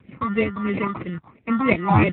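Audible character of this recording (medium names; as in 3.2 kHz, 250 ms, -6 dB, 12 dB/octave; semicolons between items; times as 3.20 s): aliases and images of a low sample rate 1.6 kHz, jitter 0%; phasing stages 4, 3 Hz, lowest notch 440–1000 Hz; tremolo saw up 2.3 Hz, depth 45%; AMR-NB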